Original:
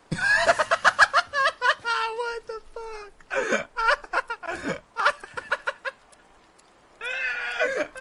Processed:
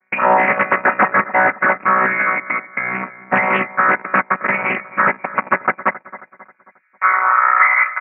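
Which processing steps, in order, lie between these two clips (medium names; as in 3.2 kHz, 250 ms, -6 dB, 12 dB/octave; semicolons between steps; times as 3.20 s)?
vocoder on a held chord bare fifth, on B2; waveshaping leveller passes 5; compression, threshold -14 dBFS, peak gain reduction 8 dB; tilt EQ +3.5 dB/octave; frequency inversion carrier 2.6 kHz; high-pass sweep 200 Hz -> 1.4 kHz, 5.89–6.58 s; feedback delay 269 ms, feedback 45%, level -17 dB; loudspeaker Doppler distortion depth 0.21 ms; trim +1 dB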